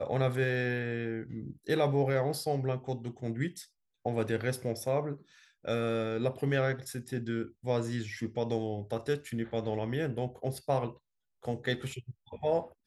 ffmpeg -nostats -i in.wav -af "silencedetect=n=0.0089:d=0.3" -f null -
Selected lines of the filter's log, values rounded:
silence_start: 3.63
silence_end: 4.05 | silence_duration: 0.43
silence_start: 5.15
silence_end: 5.65 | silence_duration: 0.50
silence_start: 10.91
silence_end: 11.45 | silence_duration: 0.54